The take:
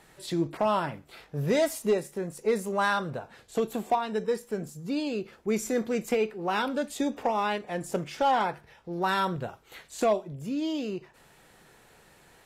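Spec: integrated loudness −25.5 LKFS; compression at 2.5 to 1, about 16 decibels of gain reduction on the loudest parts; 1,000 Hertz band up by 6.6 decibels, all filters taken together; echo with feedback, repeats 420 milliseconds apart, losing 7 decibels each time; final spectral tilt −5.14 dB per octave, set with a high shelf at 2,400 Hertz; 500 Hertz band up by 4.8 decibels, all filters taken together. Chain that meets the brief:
parametric band 500 Hz +4 dB
parametric band 1,000 Hz +8 dB
high-shelf EQ 2,400 Hz −6.5 dB
downward compressor 2.5 to 1, threshold −40 dBFS
repeating echo 420 ms, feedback 45%, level −7 dB
level +12 dB

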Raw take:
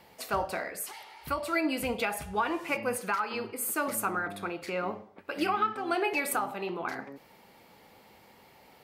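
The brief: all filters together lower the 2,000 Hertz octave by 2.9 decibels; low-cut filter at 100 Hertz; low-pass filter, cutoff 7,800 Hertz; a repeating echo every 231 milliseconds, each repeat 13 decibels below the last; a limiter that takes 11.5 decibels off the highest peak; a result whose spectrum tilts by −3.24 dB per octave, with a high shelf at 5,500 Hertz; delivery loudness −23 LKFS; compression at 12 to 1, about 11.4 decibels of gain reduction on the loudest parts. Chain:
high-pass filter 100 Hz
low-pass filter 7,800 Hz
parametric band 2,000 Hz −5 dB
high-shelf EQ 5,500 Hz +6.5 dB
downward compressor 12 to 1, threshold −36 dBFS
brickwall limiter −37 dBFS
repeating echo 231 ms, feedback 22%, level −13 dB
level +22.5 dB

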